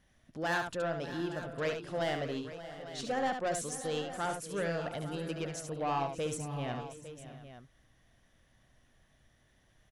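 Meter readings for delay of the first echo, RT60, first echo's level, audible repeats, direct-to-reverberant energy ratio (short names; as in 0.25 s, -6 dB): 71 ms, none, -6.5 dB, 5, none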